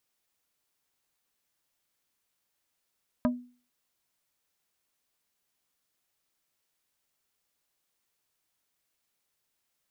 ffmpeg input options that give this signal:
-f lavfi -i "aevalsrc='0.1*pow(10,-3*t/0.4)*sin(2*PI*246*t)+0.0631*pow(10,-3*t/0.133)*sin(2*PI*615*t)+0.0398*pow(10,-3*t/0.076)*sin(2*PI*984*t)+0.0251*pow(10,-3*t/0.058)*sin(2*PI*1230*t)+0.0158*pow(10,-3*t/0.042)*sin(2*PI*1599*t)':d=0.45:s=44100"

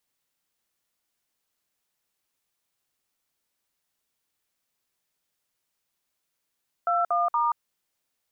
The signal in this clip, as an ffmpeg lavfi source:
-f lavfi -i "aevalsrc='0.0668*clip(min(mod(t,0.235),0.179-mod(t,0.235))/0.002,0,1)*(eq(floor(t/0.235),0)*(sin(2*PI*697*mod(t,0.235))+sin(2*PI*1336*mod(t,0.235)))+eq(floor(t/0.235),1)*(sin(2*PI*697*mod(t,0.235))+sin(2*PI*1209*mod(t,0.235)))+eq(floor(t/0.235),2)*(sin(2*PI*941*mod(t,0.235))+sin(2*PI*1209*mod(t,0.235))))':d=0.705:s=44100"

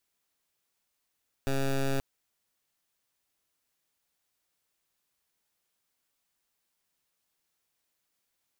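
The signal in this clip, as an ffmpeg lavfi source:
-f lavfi -i "aevalsrc='0.0422*(2*lt(mod(136*t,1),0.13)-1)':d=0.53:s=44100"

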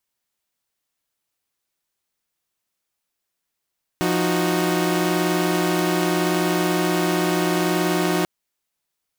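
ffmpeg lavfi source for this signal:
-f lavfi -i "aevalsrc='0.0944*((2*mod(174.61*t,1)-1)+(2*mod(311.13*t,1)-1)+(2*mod(369.99*t,1)-1))':d=4.24:s=44100"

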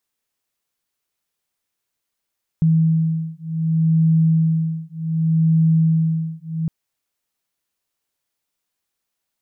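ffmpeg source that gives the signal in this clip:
-f lavfi -i "aevalsrc='0.133*(sin(2*PI*161*t)+sin(2*PI*161.66*t))':d=4.06:s=44100"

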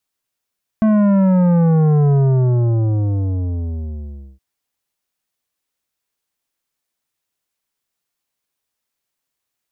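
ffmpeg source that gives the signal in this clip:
-f lavfi -i "aevalsrc='0.266*clip((3.57-t)/2.27,0,1)*tanh(3.55*sin(2*PI*220*3.57/log(65/220)*(exp(log(65/220)*t/3.57)-1)))/tanh(3.55)':d=3.57:s=44100"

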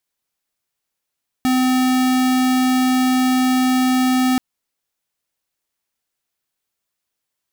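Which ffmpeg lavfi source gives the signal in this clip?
-f lavfi -i "aevalsrc='0.158*(2*lt(mod(256*t,1),0.5)-1)':d=2.93:s=44100"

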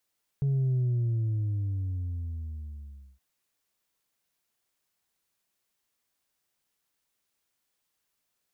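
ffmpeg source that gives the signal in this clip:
-f lavfi -i "aevalsrc='0.0668*clip((2.77-t)/2.45,0,1)*tanh(1.26*sin(2*PI*140*2.77/log(65/140)*(exp(log(65/140)*t/2.77)-1)))/tanh(1.26)':d=2.77:s=44100"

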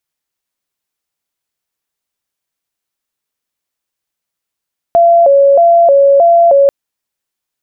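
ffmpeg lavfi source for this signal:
-f lavfi -i "aevalsrc='0.668*sin(2*PI*(619.5*t+62.5/1.6*(0.5-abs(mod(1.6*t,1)-0.5))))':d=1.74:s=44100"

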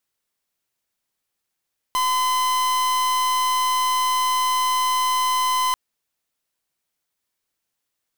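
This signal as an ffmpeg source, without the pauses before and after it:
-f lavfi -i "aevalsrc='0.0944*(2*lt(mod(1020*t,1),0.44)-1)':d=3.79:s=44100"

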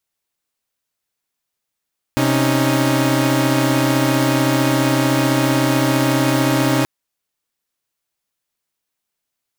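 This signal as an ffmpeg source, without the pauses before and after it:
-f lavfi -i "aevalsrc='0.158*((2*mod(130.81*t,1)-1)+(2*mod(277.18*t,1)-1)+(2*mod(311.13*t,1)-1))':d=4.68:s=44100"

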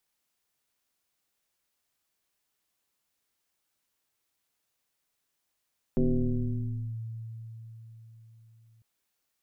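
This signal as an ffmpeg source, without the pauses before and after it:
-f lavfi -i "aevalsrc='0.1*pow(10,-3*t/4.5)*sin(2*PI*113*t+2.2*clip(1-t/1,0,1)*sin(2*PI*1.17*113*t))':d=2.85:s=44100"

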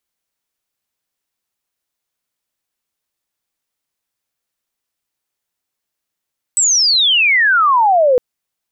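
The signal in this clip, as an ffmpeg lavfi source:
-f lavfi -i "aevalsrc='pow(10,(-10+2*t/1.61)/20)*sin(2*PI*8100*1.61/log(480/8100)*(exp(log(480/8100)*t/1.61)-1))':d=1.61:s=44100"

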